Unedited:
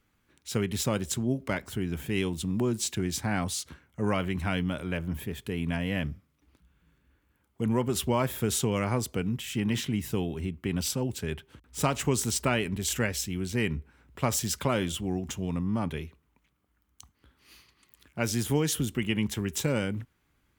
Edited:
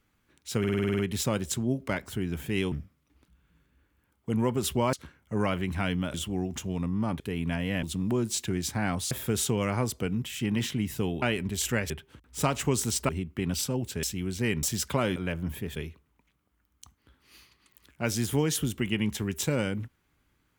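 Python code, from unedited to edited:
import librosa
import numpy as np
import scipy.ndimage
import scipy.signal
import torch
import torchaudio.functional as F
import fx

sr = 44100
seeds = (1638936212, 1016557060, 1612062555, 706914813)

y = fx.edit(x, sr, fx.stutter(start_s=0.59, slice_s=0.05, count=9),
    fx.swap(start_s=2.32, length_s=1.28, other_s=6.04, other_length_s=2.21),
    fx.swap(start_s=4.81, length_s=0.6, other_s=14.87, other_length_s=1.06),
    fx.swap(start_s=10.36, length_s=0.94, other_s=12.49, other_length_s=0.68),
    fx.cut(start_s=13.77, length_s=0.57), tone=tone)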